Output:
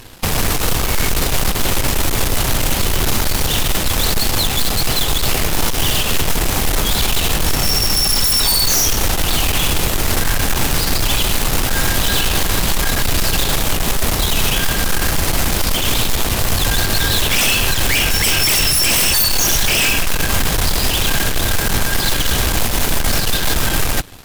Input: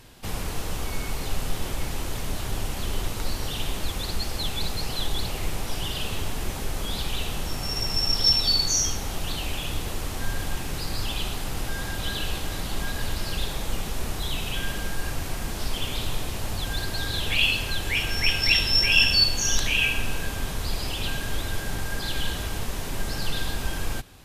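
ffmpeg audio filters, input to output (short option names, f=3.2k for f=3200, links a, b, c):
-af "aeval=exprs='0.631*sin(PI/2*7.94*val(0)/0.631)':c=same,aeval=exprs='0.668*(cos(1*acos(clip(val(0)/0.668,-1,1)))-cos(1*PI/2))+0.188*(cos(6*acos(clip(val(0)/0.668,-1,1)))-cos(6*PI/2))+0.15*(cos(7*acos(clip(val(0)/0.668,-1,1)))-cos(7*PI/2))':c=same,equalizer=f=13k:t=o:w=0.27:g=3.5,volume=-7.5dB"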